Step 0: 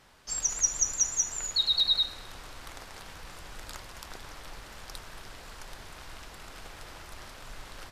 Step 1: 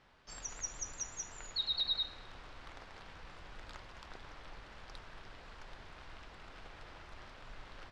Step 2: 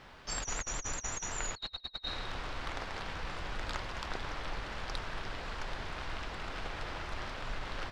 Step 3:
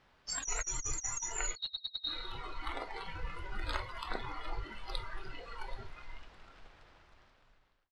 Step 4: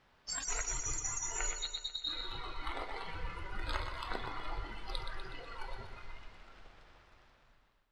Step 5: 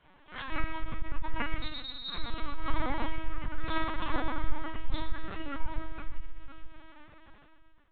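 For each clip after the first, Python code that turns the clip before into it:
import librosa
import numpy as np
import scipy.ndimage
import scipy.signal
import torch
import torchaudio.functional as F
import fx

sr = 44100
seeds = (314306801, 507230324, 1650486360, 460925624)

y1 = scipy.signal.sosfilt(scipy.signal.butter(2, 3700.0, 'lowpass', fs=sr, output='sos'), x)
y1 = y1 * librosa.db_to_amplitude(-6.0)
y2 = fx.over_compress(y1, sr, threshold_db=-46.0, ratio=-0.5)
y2 = y2 * librosa.db_to_amplitude(9.5)
y3 = fx.fade_out_tail(y2, sr, length_s=2.25)
y3 = fx.noise_reduce_blind(y3, sr, reduce_db=16)
y3 = y3 * librosa.db_to_amplitude(2.5)
y4 = fx.echo_feedback(y3, sr, ms=123, feedback_pct=57, wet_db=-8)
y4 = y4 * librosa.db_to_amplitude(-1.0)
y5 = fx.room_shoebox(y4, sr, seeds[0], volume_m3=690.0, walls='furnished', distance_m=4.3)
y5 = fx.lpc_vocoder(y5, sr, seeds[1], excitation='pitch_kept', order=10)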